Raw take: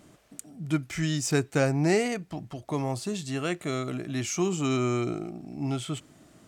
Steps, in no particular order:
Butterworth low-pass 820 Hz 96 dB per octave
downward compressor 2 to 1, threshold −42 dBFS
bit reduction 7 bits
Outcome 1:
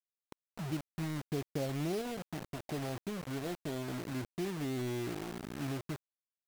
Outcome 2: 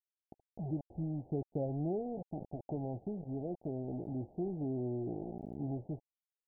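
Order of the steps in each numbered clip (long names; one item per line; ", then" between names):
downward compressor, then Butterworth low-pass, then bit reduction
downward compressor, then bit reduction, then Butterworth low-pass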